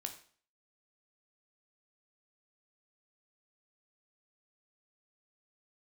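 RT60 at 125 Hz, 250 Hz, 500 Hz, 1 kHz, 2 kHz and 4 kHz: 0.50 s, 0.50 s, 0.45 s, 0.45 s, 0.45 s, 0.45 s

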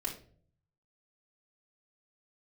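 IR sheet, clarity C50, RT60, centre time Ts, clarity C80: 9.0 dB, 0.50 s, 18 ms, 14.0 dB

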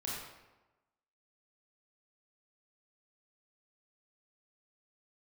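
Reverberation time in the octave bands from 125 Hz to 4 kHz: 1.1 s, 1.1 s, 1.1 s, 1.1 s, 0.90 s, 0.70 s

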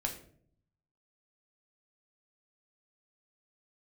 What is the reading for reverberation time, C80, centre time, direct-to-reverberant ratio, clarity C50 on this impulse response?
0.60 s, 13.0 dB, 16 ms, 1.5 dB, 9.5 dB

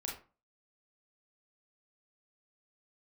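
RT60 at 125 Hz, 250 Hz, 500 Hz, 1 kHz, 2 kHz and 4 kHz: 0.40 s, 0.40 s, 0.35 s, 0.35 s, 0.30 s, 0.20 s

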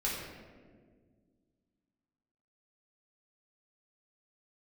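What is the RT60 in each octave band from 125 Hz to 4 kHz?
2.6 s, 2.6 s, 2.1 s, 1.4 s, 1.2 s, 0.85 s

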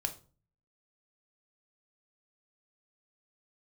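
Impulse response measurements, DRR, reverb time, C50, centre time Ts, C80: 5.0 dB, 0.40 s, 14.0 dB, 8 ms, 19.5 dB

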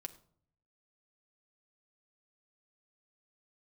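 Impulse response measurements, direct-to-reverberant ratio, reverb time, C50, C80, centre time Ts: 7.0 dB, 0.60 s, 16.0 dB, 18.5 dB, 5 ms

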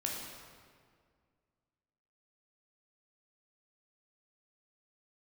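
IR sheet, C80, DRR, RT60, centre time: 3.0 dB, -2.0 dB, 2.0 s, 87 ms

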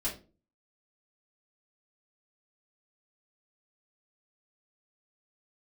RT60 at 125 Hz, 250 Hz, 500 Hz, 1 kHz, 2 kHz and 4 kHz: 0.50 s, 0.50 s, 0.40 s, 0.30 s, 0.25 s, 0.25 s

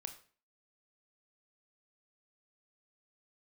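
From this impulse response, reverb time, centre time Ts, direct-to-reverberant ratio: 0.45 s, 9 ms, 6.5 dB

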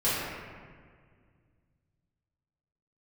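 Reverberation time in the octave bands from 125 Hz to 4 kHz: 3.2 s, 2.6 s, 2.0 s, 1.7 s, 1.7 s, 1.1 s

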